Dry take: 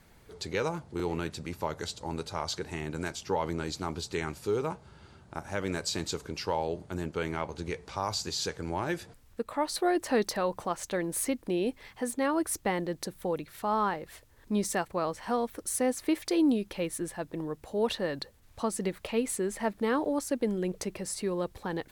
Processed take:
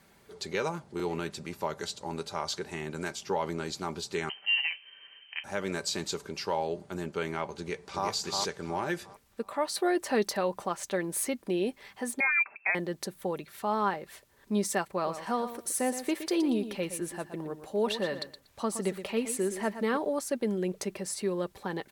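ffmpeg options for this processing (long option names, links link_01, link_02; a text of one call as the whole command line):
ffmpeg -i in.wav -filter_complex "[0:a]asettb=1/sr,asplit=3[link_01][link_02][link_03];[link_01]atrim=end=4.294[link_04];[link_02]atrim=start=4.29:end=5.44,asetpts=PTS-STARTPTS,afade=type=in:duration=0.004:curve=qsin,afade=type=out:start_time=1.146:duration=0.004:curve=qsin,lowpass=frequency=2700:width_type=q:width=0.5098,lowpass=frequency=2700:width_type=q:width=0.6013,lowpass=frequency=2700:width_type=q:width=0.9,lowpass=frequency=2700:width_type=q:width=2.563,afreqshift=-3200[link_05];[link_03]atrim=start=5.436[link_06];[link_04][link_05]acrossfade=duration=0.004:curve1=hsin:curve2=qsin[link_07];[link_07][link_06]acrossfade=duration=0.004:curve1=qsin:curve2=hsin,asplit=2[link_08][link_09];[link_09]afade=type=in:start_time=7.57:duration=0.01,afade=type=out:start_time=8.08:duration=0.01,aecho=0:1:360|720|1080|1440|1800:0.668344|0.23392|0.0818721|0.0286552|0.0100293[link_10];[link_08][link_10]amix=inputs=2:normalize=0,asettb=1/sr,asplit=3[link_11][link_12][link_13];[link_11]atrim=end=12.204[link_14];[link_12]atrim=start=12.2:end=12.75,asetpts=PTS-STARTPTS,afade=type=in:duration=0.004:curve=qsin,afade=type=out:start_time=0.546:duration=0.004:curve=qsin,lowpass=frequency=2300:width_type=q:width=0.5098,lowpass=frequency=2300:width_type=q:width=0.6013,lowpass=frequency=2300:width_type=q:width=0.9,lowpass=frequency=2300:width_type=q:width=2.563,afreqshift=-2700[link_15];[link_13]atrim=start=12.746[link_16];[link_14][link_15]acrossfade=duration=0.004:curve1=hsin:curve2=qsin[link_17];[link_17][link_16]acrossfade=duration=0.004:curve1=qsin:curve2=hsin,asettb=1/sr,asplit=3[link_18][link_19][link_20];[link_18]atrim=end=14.934[link_21];[link_19]atrim=start=14.93:end=19.97,asetpts=PTS-STARTPTS,afade=type=in:duration=0.004:curve=qsin,afade=type=out:start_time=5.036:duration=0.004:curve=qsin,aecho=1:1:119|238:0.282|0.0507,atrim=end_sample=222264[link_22];[link_20]atrim=start=19.966[link_23];[link_21][link_22]acrossfade=duration=0.004:curve1=hsin:curve2=qsin[link_24];[link_24][link_23]acrossfade=duration=0.004:curve1=qsin:curve2=hsin,highpass=frequency=180:poles=1,aecho=1:1:5.1:0.35" out.wav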